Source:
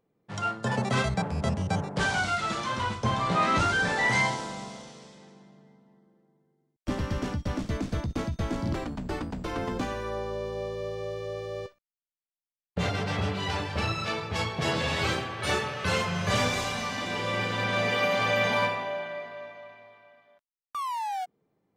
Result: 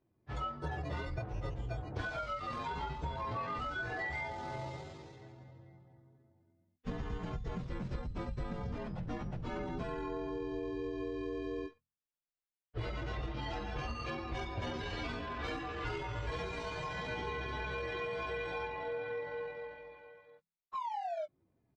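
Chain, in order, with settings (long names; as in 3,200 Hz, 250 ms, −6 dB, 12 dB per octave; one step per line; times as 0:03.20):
partials spread apart or drawn together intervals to 118%
mains-hum notches 60/120/180/240/300/360 Hz
downward compressor 10 to 1, threshold −37 dBFS, peak gain reduction 15.5 dB
pitch shifter −6.5 semitones
high-frequency loss of the air 150 metres
level +2.5 dB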